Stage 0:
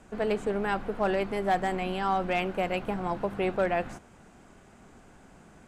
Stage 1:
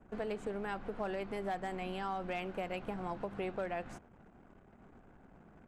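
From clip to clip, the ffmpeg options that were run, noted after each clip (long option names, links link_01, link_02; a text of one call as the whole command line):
ffmpeg -i in.wav -af "acompressor=threshold=-32dB:ratio=3,anlmdn=0.000631,volume=-4.5dB" out.wav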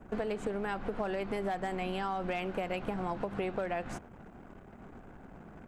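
ffmpeg -i in.wav -af "acompressor=threshold=-39dB:ratio=6,volume=8.5dB" out.wav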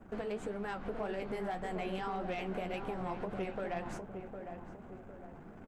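ffmpeg -i in.wav -filter_complex "[0:a]flanger=delay=8.3:depth=7.8:regen=43:speed=1.8:shape=triangular,asoftclip=type=tanh:threshold=-30.5dB,asplit=2[link_01][link_02];[link_02]adelay=757,lowpass=frequency=1000:poles=1,volume=-6dB,asplit=2[link_03][link_04];[link_04]adelay=757,lowpass=frequency=1000:poles=1,volume=0.48,asplit=2[link_05][link_06];[link_06]adelay=757,lowpass=frequency=1000:poles=1,volume=0.48,asplit=2[link_07][link_08];[link_08]adelay=757,lowpass=frequency=1000:poles=1,volume=0.48,asplit=2[link_09][link_10];[link_10]adelay=757,lowpass=frequency=1000:poles=1,volume=0.48,asplit=2[link_11][link_12];[link_12]adelay=757,lowpass=frequency=1000:poles=1,volume=0.48[link_13];[link_03][link_05][link_07][link_09][link_11][link_13]amix=inputs=6:normalize=0[link_14];[link_01][link_14]amix=inputs=2:normalize=0,volume=1dB" out.wav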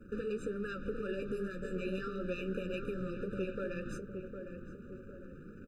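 ffmpeg -i in.wav -af "afftfilt=real='re*eq(mod(floor(b*sr/1024/590),2),0)':imag='im*eq(mod(floor(b*sr/1024/590),2),0)':win_size=1024:overlap=0.75,volume=2dB" out.wav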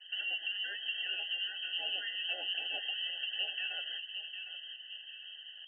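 ffmpeg -i in.wav -af "lowpass=frequency=2700:width_type=q:width=0.5098,lowpass=frequency=2700:width_type=q:width=0.6013,lowpass=frequency=2700:width_type=q:width=0.9,lowpass=frequency=2700:width_type=q:width=2.563,afreqshift=-3200" out.wav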